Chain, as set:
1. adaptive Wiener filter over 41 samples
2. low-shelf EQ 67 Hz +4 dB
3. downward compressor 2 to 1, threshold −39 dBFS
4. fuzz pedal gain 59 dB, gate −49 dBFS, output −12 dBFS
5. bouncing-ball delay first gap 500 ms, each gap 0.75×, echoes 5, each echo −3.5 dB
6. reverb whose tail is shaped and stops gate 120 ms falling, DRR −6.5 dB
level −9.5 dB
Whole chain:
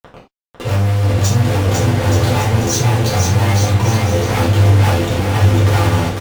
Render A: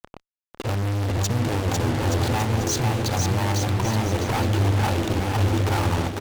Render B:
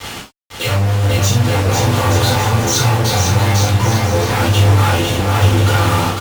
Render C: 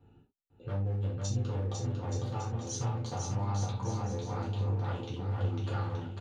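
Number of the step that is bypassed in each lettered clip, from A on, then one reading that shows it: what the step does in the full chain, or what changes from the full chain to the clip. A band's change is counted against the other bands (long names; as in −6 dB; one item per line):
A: 6, echo-to-direct ratio 9.5 dB to −1.0 dB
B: 1, 125 Hz band −3.5 dB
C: 4, distortion level −3 dB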